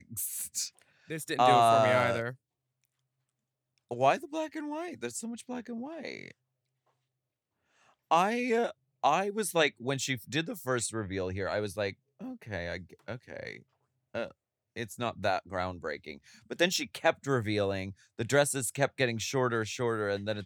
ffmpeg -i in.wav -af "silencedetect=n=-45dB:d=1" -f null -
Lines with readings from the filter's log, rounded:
silence_start: 2.34
silence_end: 3.91 | silence_duration: 1.57
silence_start: 6.31
silence_end: 8.11 | silence_duration: 1.80